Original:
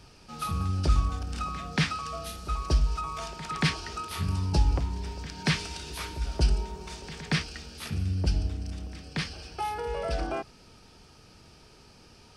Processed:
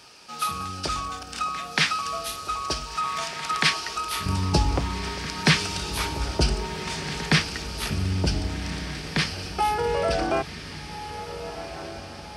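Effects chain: HPF 900 Hz 6 dB/oct, from 4.26 s 160 Hz; diffused feedback echo 1.527 s, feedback 52%, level -11 dB; gain +8.5 dB

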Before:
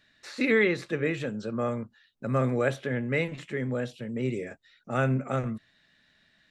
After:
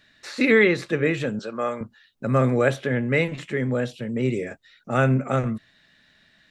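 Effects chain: 1.39–1.81 weighting filter A; gain +6 dB

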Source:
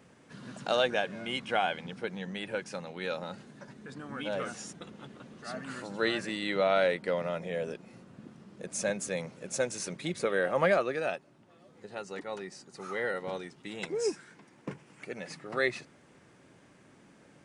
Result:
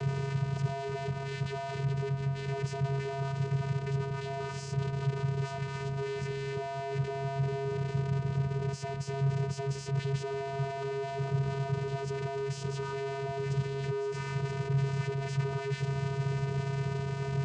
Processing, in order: infinite clipping; vocoder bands 8, square 137 Hz; gain +3 dB

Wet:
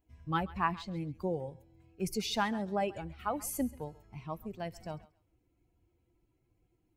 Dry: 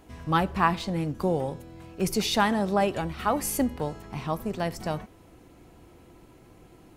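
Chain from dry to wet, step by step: per-bin expansion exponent 1.5; thinning echo 0.135 s, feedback 21%, high-pass 670 Hz, level -18 dB; gain -6.5 dB

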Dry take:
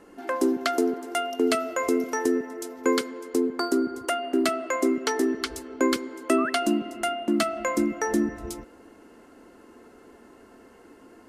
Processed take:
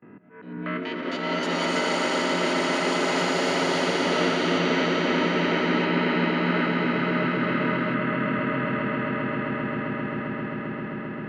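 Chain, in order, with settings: spectral trails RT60 2.27 s; gate with hold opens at -41 dBFS; bell 900 Hz -7.5 dB 1.2 oct; auto swell 0.748 s; negative-ratio compressor -30 dBFS, ratio -0.5; mistuned SSB -83 Hz 200–2500 Hz; wow and flutter 27 cents; swelling echo 0.132 s, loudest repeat 8, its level -4 dB; echoes that change speed 0.411 s, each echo +7 st, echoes 3

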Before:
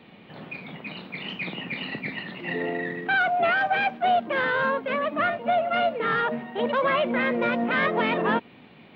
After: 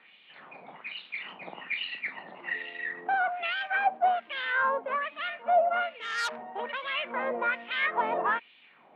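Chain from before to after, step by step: LFO band-pass sine 1.2 Hz 720–3300 Hz; 5.99–6.39 core saturation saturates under 3700 Hz; gain +2.5 dB

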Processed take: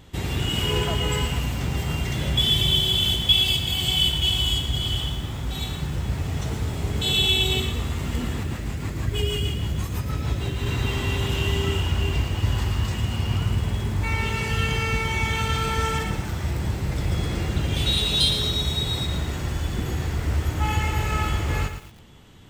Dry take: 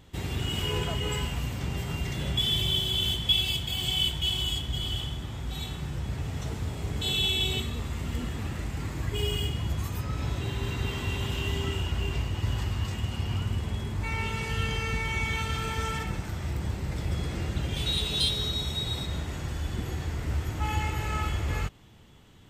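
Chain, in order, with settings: 8.43–10.66 rotary speaker horn 6.3 Hz; lo-fi delay 0.114 s, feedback 35%, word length 8-bit, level -8.5 dB; gain +5.5 dB

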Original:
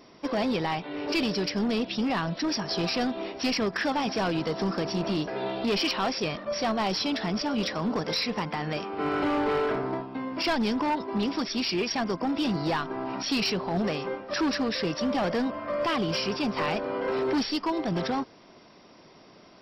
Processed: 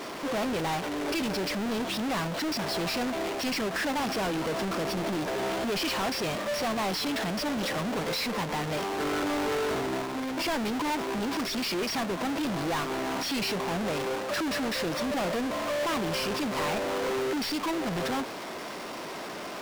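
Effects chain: half-waves squared off; overdrive pedal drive 31 dB, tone 5500 Hz, clips at -19 dBFS; gain -6.5 dB

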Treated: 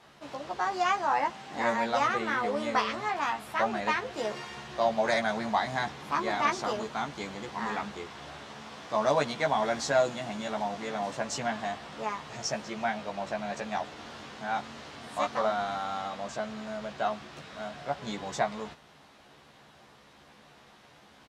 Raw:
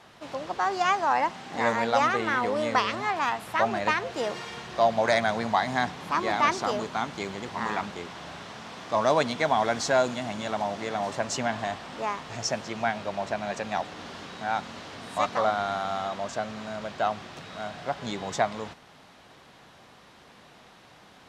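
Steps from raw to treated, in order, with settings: doubler 14 ms -3 dB; gain -5 dB

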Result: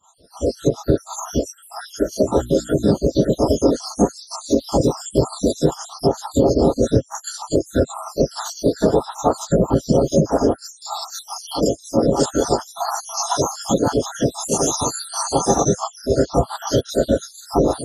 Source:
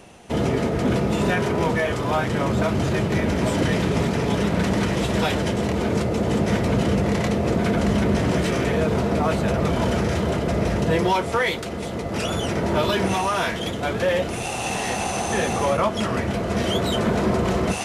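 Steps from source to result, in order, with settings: random spectral dropouts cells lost 78%; dynamic EQ 1200 Hz, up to -4 dB, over -44 dBFS, Q 4.1; AGC gain up to 12 dB; low shelf 480 Hz +4 dB; reverb, pre-delay 3 ms, DRR -13 dB; spectral gate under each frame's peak -10 dB weak; 2.18–2.89 notches 60/120/180/240/300/360 Hz; compressor 3:1, threshold -13 dBFS, peak gain reduction 8 dB; Butterworth band-stop 2300 Hz, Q 0.7

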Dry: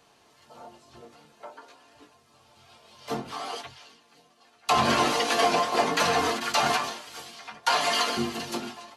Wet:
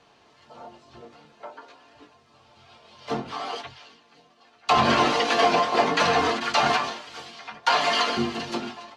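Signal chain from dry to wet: LPF 4800 Hz 12 dB/oct; gain +3 dB

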